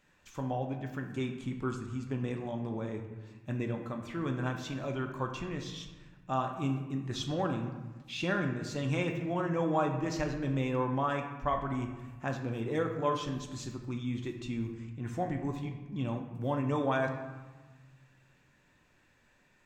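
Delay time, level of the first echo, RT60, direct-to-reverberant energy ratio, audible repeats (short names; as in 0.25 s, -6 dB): none, none, 1.3 s, 3.0 dB, none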